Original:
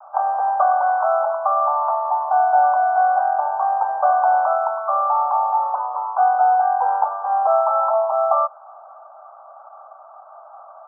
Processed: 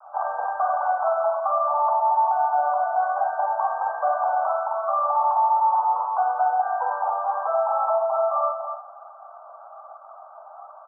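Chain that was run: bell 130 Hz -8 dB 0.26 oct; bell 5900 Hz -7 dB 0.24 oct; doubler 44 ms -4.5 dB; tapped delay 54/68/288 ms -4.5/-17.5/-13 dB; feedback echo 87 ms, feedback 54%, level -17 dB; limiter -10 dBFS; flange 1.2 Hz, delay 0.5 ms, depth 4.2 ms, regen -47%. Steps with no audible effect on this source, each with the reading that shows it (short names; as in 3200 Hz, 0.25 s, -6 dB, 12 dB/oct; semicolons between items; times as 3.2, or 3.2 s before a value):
bell 130 Hz: input band starts at 480 Hz; bell 5900 Hz: input band ends at 1500 Hz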